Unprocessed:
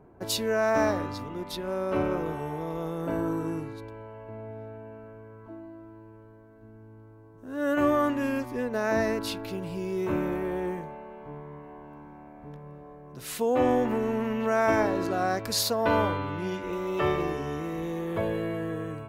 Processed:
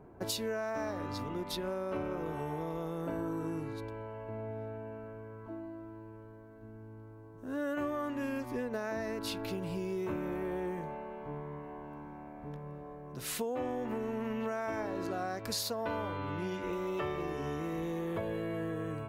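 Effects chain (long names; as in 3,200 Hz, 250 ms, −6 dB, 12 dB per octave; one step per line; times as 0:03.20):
downward compressor, threshold −33 dBFS, peak gain reduction 14 dB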